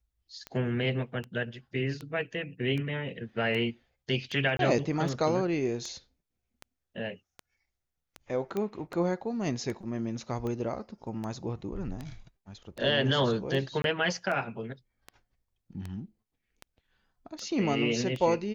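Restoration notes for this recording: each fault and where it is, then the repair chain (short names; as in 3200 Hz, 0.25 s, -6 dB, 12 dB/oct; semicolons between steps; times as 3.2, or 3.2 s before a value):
tick 78 rpm -24 dBFS
4.57–4.59 gap 22 ms
8.57 pop -20 dBFS
13.82–13.84 gap 22 ms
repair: de-click; interpolate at 4.57, 22 ms; interpolate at 13.82, 22 ms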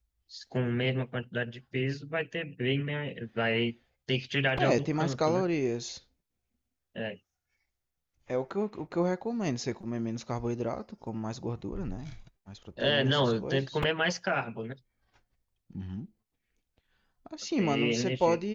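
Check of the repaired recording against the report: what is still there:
none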